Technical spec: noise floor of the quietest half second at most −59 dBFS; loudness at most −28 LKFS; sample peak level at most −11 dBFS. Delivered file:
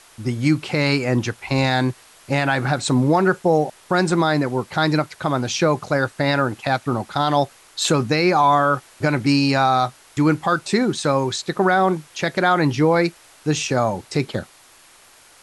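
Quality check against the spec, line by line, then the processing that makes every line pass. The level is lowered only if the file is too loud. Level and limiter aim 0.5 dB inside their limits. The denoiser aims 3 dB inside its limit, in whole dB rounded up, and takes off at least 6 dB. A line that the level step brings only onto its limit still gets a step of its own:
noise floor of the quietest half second −50 dBFS: out of spec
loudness −20.0 LKFS: out of spec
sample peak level −6.5 dBFS: out of spec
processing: broadband denoise 6 dB, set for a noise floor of −50 dBFS
level −8.5 dB

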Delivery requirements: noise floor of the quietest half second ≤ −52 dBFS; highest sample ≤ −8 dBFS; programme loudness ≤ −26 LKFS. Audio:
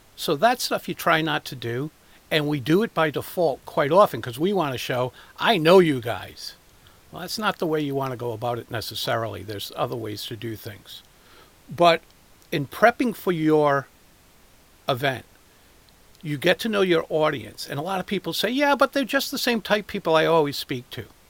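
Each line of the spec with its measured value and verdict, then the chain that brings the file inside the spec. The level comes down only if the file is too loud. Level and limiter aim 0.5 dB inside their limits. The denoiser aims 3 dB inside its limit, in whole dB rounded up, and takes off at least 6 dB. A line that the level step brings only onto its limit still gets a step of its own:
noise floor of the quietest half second −54 dBFS: in spec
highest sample −2.5 dBFS: out of spec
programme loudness −23.0 LKFS: out of spec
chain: level −3.5 dB
brickwall limiter −8.5 dBFS

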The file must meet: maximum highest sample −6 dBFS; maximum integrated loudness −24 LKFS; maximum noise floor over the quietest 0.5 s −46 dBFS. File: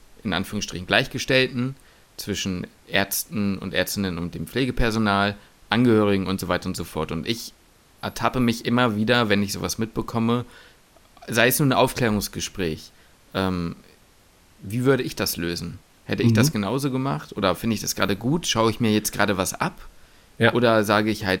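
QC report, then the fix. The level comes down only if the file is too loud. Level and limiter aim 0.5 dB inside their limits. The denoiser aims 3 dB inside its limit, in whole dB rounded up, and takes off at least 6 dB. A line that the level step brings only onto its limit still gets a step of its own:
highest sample −2.5 dBFS: out of spec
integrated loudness −23.0 LKFS: out of spec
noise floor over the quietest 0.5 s −55 dBFS: in spec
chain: level −1.5 dB
brickwall limiter −6.5 dBFS

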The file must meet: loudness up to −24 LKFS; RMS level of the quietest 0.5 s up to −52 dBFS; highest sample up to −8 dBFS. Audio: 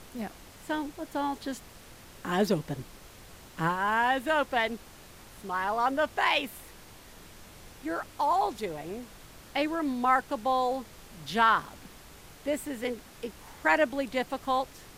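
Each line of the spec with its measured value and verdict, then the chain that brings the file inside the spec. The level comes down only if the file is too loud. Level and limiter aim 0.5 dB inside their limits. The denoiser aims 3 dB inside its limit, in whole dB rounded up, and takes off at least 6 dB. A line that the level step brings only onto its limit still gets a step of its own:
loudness −29.5 LKFS: in spec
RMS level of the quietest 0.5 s −50 dBFS: out of spec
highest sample −11.5 dBFS: in spec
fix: broadband denoise 6 dB, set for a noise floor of −50 dBFS

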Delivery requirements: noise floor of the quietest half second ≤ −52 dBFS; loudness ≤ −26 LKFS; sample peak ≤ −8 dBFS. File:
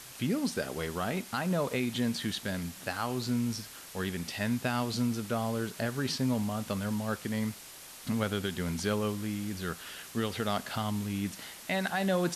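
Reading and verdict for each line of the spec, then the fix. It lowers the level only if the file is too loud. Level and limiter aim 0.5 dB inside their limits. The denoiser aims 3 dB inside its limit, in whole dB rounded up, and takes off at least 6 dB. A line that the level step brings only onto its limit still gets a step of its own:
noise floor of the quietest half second −48 dBFS: out of spec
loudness −33.0 LKFS: in spec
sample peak −18.0 dBFS: in spec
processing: broadband denoise 7 dB, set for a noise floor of −48 dBFS

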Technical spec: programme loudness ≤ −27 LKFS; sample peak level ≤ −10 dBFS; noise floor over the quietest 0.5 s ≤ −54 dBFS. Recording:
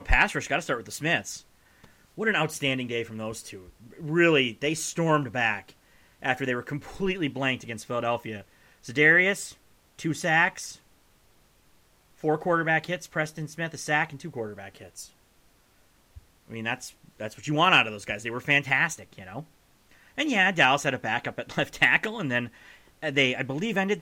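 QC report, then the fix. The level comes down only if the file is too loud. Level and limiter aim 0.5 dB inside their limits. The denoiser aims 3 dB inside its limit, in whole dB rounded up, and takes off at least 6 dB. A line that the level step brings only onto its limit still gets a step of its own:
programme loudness −25.5 LKFS: out of spec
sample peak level −6.0 dBFS: out of spec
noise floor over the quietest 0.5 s −62 dBFS: in spec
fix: level −2 dB
brickwall limiter −10.5 dBFS

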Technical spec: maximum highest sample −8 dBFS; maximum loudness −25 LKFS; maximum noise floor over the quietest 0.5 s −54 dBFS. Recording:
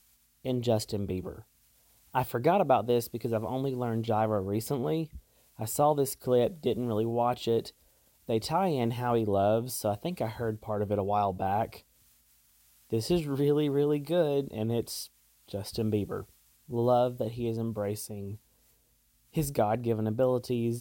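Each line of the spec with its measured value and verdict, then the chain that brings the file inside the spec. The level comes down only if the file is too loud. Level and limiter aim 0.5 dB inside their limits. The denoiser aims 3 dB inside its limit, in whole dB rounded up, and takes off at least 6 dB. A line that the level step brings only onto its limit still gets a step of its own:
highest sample −11.5 dBFS: in spec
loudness −30.0 LKFS: in spec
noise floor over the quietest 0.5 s −68 dBFS: in spec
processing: no processing needed

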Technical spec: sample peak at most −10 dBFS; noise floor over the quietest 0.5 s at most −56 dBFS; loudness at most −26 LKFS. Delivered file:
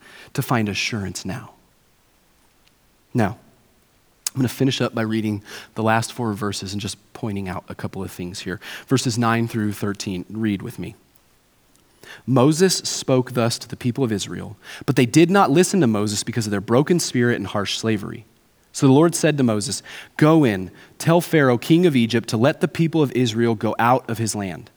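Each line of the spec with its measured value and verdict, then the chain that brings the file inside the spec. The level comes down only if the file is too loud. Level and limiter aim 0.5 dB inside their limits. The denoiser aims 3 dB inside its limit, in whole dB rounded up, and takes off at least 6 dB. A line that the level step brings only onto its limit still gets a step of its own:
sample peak −2.5 dBFS: out of spec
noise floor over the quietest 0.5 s −59 dBFS: in spec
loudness −20.5 LKFS: out of spec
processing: level −6 dB
brickwall limiter −10.5 dBFS

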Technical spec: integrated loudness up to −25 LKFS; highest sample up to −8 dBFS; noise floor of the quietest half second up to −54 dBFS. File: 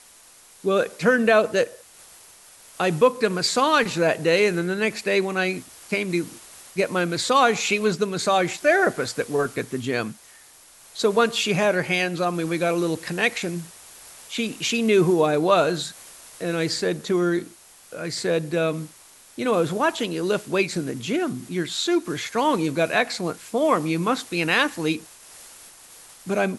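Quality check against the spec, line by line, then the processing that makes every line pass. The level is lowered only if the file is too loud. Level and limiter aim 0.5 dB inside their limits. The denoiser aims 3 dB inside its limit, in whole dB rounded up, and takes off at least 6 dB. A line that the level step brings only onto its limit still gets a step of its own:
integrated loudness −22.5 LKFS: out of spec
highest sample −5.0 dBFS: out of spec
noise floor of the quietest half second −51 dBFS: out of spec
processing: broadband denoise 6 dB, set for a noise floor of −51 dBFS
level −3 dB
brickwall limiter −8.5 dBFS

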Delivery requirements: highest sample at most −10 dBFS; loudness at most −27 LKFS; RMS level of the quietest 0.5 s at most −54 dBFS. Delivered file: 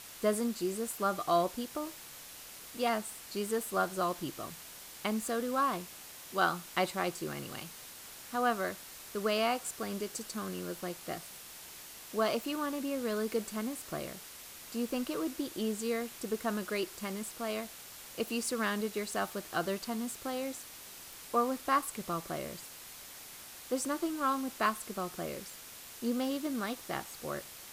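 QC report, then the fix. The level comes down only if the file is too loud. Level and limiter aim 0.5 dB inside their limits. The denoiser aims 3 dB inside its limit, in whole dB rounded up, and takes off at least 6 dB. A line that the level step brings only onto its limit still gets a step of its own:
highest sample −13.5 dBFS: in spec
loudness −35.0 LKFS: in spec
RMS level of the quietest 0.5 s −49 dBFS: out of spec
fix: broadband denoise 8 dB, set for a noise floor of −49 dBFS

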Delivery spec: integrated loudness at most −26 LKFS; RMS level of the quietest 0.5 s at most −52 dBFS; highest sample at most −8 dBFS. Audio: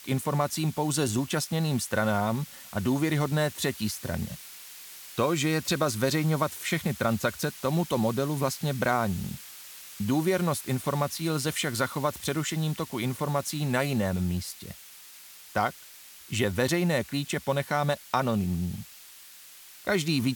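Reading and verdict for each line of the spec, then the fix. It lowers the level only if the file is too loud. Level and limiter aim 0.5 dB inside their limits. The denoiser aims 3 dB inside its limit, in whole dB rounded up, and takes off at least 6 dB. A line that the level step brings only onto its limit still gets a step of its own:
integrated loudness −28.5 LKFS: in spec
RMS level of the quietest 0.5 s −49 dBFS: out of spec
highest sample −11.0 dBFS: in spec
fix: broadband denoise 6 dB, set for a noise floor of −49 dBFS

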